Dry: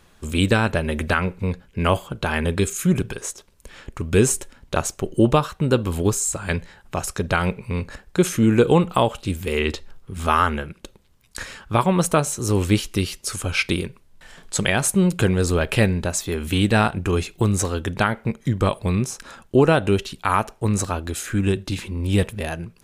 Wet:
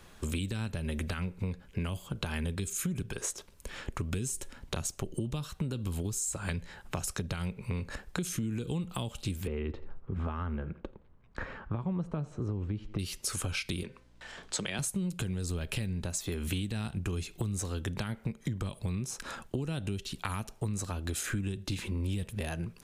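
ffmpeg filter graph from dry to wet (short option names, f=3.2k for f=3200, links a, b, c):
-filter_complex "[0:a]asettb=1/sr,asplit=3[a][b][c];[a]atrim=end=9.474[d];[b]atrim=start=9.47:end=12.99,asetpts=PTS-STARTPTS,afade=t=in:d=0.004:c=qsin,afade=t=out:st=3.516:d=0.004:c=qsin,lowpass=1.3k,aecho=1:1:85|170:0.0668|0.0241,atrim=end_sample=155232[e];[c]atrim=start=12.986[f];[d][e]acrossfade=d=0.004:c1=hsin:c2=qsin[g];[g][f]acrossfade=d=0.004:c1=qsin:c2=hsin,asettb=1/sr,asplit=3[h][i][j];[h]atrim=end=13.834[k];[i]atrim=start=13.83:end=14.79,asetpts=PTS-STARTPTS,afade=t=in:d=0.004:c=qsin,afade=t=out:st=0.956:d=0.004:c=qsin,acrossover=split=210 7600:gain=0.224 1 0.158[l][m][n];[l][m][n]amix=inputs=3:normalize=0,bandreject=f=257.2:t=h:w=4,bandreject=f=514.4:t=h:w=4,bandreject=f=771.6:t=h:w=4,bandreject=f=1.0288k:t=h:w=4,bandreject=f=1.286k:t=h:w=4,bandreject=f=1.5432k:t=h:w=4,bandreject=f=1.8004k:t=h:w=4,bandreject=f=2.0576k:t=h:w=4,bandreject=f=2.3148k:t=h:w=4,aeval=exprs='val(0)+0.000891*(sin(2*PI*60*n/s)+sin(2*PI*2*60*n/s)/2+sin(2*PI*3*60*n/s)/3+sin(2*PI*4*60*n/s)/4+sin(2*PI*5*60*n/s)/5)':c=same[o];[j]atrim=start=14.786[p];[k][o]acrossfade=d=0.004:c1=hsin:c2=qsin[q];[q][p]acrossfade=d=0.004:c1=qsin:c2=hsin,acrossover=split=250|3000[r][s][t];[s]acompressor=threshold=-31dB:ratio=6[u];[r][u][t]amix=inputs=3:normalize=0,alimiter=limit=-13.5dB:level=0:latency=1:release=90,acompressor=threshold=-31dB:ratio=6"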